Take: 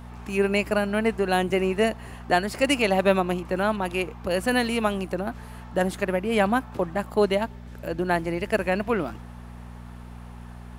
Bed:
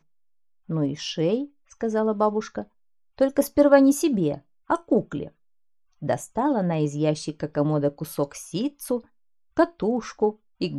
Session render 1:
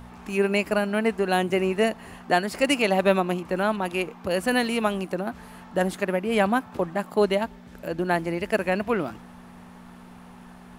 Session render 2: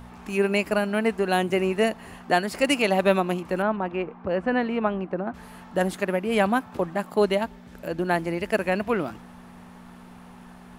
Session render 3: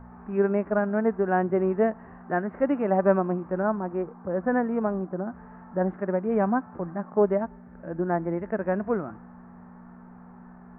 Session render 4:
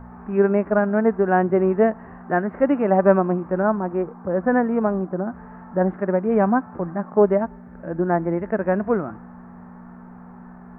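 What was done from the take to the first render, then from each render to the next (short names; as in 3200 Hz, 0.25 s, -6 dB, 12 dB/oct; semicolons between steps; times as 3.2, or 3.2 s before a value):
de-hum 60 Hz, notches 2
3.62–5.34 LPF 1700 Hz
steep low-pass 1700 Hz 36 dB/oct; harmonic-percussive split percussive -9 dB
gain +5.5 dB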